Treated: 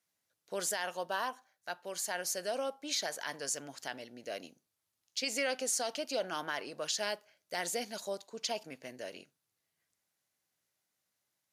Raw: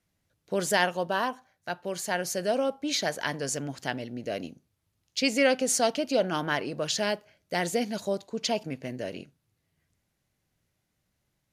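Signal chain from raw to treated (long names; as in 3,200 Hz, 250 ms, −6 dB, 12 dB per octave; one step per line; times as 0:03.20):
high-pass filter 1,300 Hz 6 dB per octave
parametric band 2,500 Hz −4.5 dB 1.5 octaves
brickwall limiter −23 dBFS, peak gain reduction 9 dB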